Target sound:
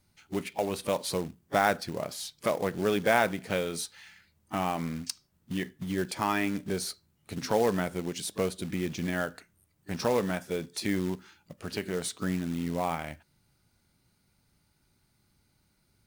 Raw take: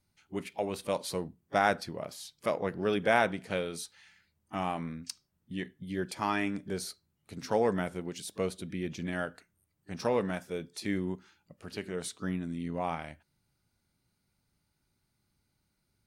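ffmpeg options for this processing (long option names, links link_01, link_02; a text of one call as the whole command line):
ffmpeg -i in.wav -filter_complex "[0:a]asplit=2[link_01][link_02];[link_02]acompressor=threshold=-38dB:ratio=20,volume=2dB[link_03];[link_01][link_03]amix=inputs=2:normalize=0,acrusher=bits=4:mode=log:mix=0:aa=0.000001" out.wav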